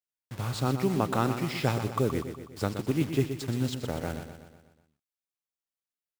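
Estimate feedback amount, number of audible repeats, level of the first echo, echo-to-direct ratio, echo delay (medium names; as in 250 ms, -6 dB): 54%, 5, -9.0 dB, -7.5 dB, 123 ms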